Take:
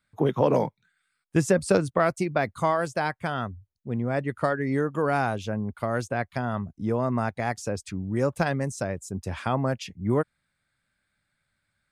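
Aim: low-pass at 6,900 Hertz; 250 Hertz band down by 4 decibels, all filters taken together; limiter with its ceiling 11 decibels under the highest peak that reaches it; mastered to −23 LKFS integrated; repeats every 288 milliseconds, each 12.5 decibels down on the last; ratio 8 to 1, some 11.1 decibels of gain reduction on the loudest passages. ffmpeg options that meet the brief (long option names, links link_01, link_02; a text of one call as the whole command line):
ffmpeg -i in.wav -af "lowpass=6900,equalizer=frequency=250:width_type=o:gain=-5.5,acompressor=threshold=-29dB:ratio=8,alimiter=level_in=1dB:limit=-24dB:level=0:latency=1,volume=-1dB,aecho=1:1:288|576|864:0.237|0.0569|0.0137,volume=14dB" out.wav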